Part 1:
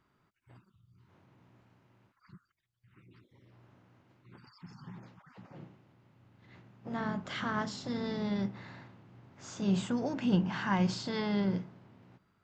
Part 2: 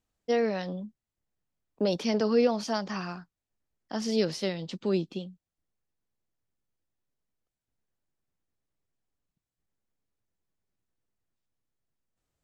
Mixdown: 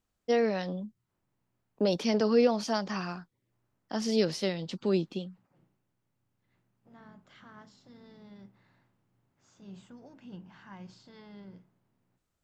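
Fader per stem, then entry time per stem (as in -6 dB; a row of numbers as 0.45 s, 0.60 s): -18.5 dB, 0.0 dB; 0.00 s, 0.00 s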